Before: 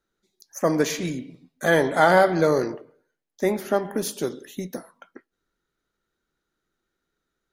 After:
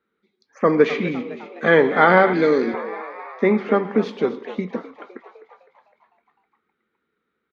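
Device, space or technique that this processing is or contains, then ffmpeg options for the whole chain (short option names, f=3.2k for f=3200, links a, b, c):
frequency-shifting delay pedal into a guitar cabinet: -filter_complex "[0:a]asplit=8[a][b][c][d][e][f][g][h];[b]adelay=255,afreqshift=85,volume=-15dB[i];[c]adelay=510,afreqshift=170,volume=-19.2dB[j];[d]adelay=765,afreqshift=255,volume=-23.3dB[k];[e]adelay=1020,afreqshift=340,volume=-27.5dB[l];[f]adelay=1275,afreqshift=425,volume=-31.6dB[m];[g]adelay=1530,afreqshift=510,volume=-35.8dB[n];[h]adelay=1785,afreqshift=595,volume=-39.9dB[o];[a][i][j][k][l][m][n][o]amix=inputs=8:normalize=0,highpass=95,equalizer=f=130:t=q:w=4:g=-5,equalizer=f=220:t=q:w=4:g=9,equalizer=f=450:t=q:w=4:g=8,equalizer=f=640:t=q:w=4:g=-5,equalizer=f=1.2k:t=q:w=4:g=7,equalizer=f=2.2k:t=q:w=4:g=8,lowpass=f=3.5k:w=0.5412,lowpass=f=3.5k:w=1.3066,asettb=1/sr,asplit=3[p][q][r];[p]atrim=end=2.334[s];[q]atrim=start=2.33:end=2.74,asetpts=PTS-STARTPTS,afade=t=in:d=0.004:c=qsin,afade=t=out:st=0.406:d=0.004:c=qsin,equalizer=f=125:t=o:w=1:g=-11,equalizer=f=250:t=o:w=1:g=6,equalizer=f=500:t=o:w=1:g=-4,equalizer=f=1k:t=o:w=1:g=-10,equalizer=f=4k:t=o:w=1:g=5,equalizer=f=8k:t=o:w=1:g=9[t];[r]atrim=start=2.736[u];[s][t]acrossfade=d=0.004:c1=hsin:c2=qsin[v];[v][u]acrossfade=d=0.004:c1=qsin:c2=hsin,volume=1.5dB"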